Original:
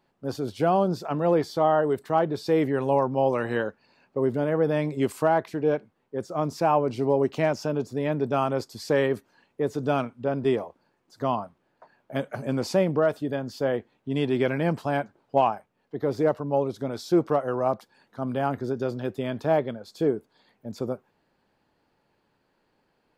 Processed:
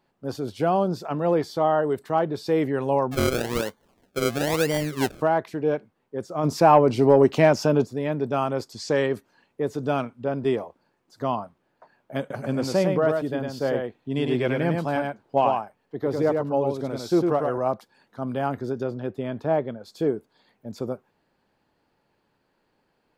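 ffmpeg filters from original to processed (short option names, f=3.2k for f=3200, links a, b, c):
-filter_complex "[0:a]asplit=3[a][b][c];[a]afade=t=out:st=3.11:d=0.02[d];[b]acrusher=samples=33:mix=1:aa=0.000001:lfo=1:lforange=33:lforate=1,afade=t=in:st=3.11:d=0.02,afade=t=out:st=5.2:d=0.02[e];[c]afade=t=in:st=5.2:d=0.02[f];[d][e][f]amix=inputs=3:normalize=0,asplit=3[g][h][i];[g]afade=t=out:st=6.43:d=0.02[j];[h]acontrast=88,afade=t=in:st=6.43:d=0.02,afade=t=out:st=7.84:d=0.02[k];[i]afade=t=in:st=7.84:d=0.02[l];[j][k][l]amix=inputs=3:normalize=0,asettb=1/sr,asplit=3[m][n][o];[m]atrim=end=8.724[p];[n]atrim=start=8.72:end=9.14,asetpts=PTS-STARTPTS,afade=t=in:d=0.004:c=qsin,afade=t=out:st=0.416:d=0.004:c=qsin,lowpass=f=6.9k:t=q:w=1.8[q];[o]atrim=start=9.136[r];[p][q]acrossfade=d=0.004:c1=hsin:c2=qsin[s];[s][r]acrossfade=d=0.004:c1=qsin:c2=hsin,asettb=1/sr,asplit=3[t][u][v];[t]atrim=end=12.204[w];[u]atrim=start=12.2:end=17.58,asetpts=PTS-STARTPTS,afade=t=in:d=0.004:c=qsin,afade=t=out:st=5.376:d=0.004:c=qsin,aecho=1:1:102:0.631,atrim=end_sample=237258[x];[v]atrim=start=17.576[y];[w][x]acrossfade=d=0.004:c1=hsin:c2=qsin[z];[z][y]acrossfade=d=0.004:c1=qsin:c2=hsin,asettb=1/sr,asplit=3[aa][ab][ac];[aa]atrim=end=18.834[ad];[ab]atrim=start=18.83:end=19.8,asetpts=PTS-STARTPTS,afade=t=in:d=0.004:c=qsin,afade=t=out:st=0.966:d=0.004:c=qsin,highshelf=f=2.9k:g=-10.5[ae];[ac]atrim=start=19.796[af];[ad][ae]acrossfade=d=0.004:c1=hsin:c2=qsin[ag];[ag][af]acrossfade=d=0.004:c1=qsin:c2=hsin"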